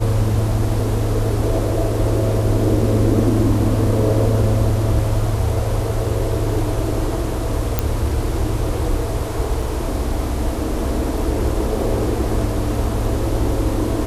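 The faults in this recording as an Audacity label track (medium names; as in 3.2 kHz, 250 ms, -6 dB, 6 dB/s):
7.790000	7.790000	pop -3 dBFS
9.620000	9.620000	dropout 4.2 ms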